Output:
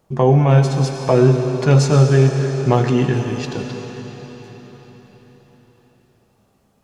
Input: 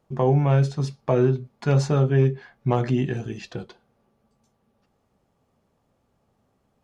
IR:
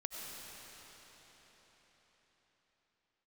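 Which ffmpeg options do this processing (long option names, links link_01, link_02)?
-filter_complex "[0:a]asplit=2[link_01][link_02];[1:a]atrim=start_sample=2205,highshelf=frequency=4000:gain=12[link_03];[link_02][link_03]afir=irnorm=-1:irlink=0,volume=0dB[link_04];[link_01][link_04]amix=inputs=2:normalize=0,volume=2dB"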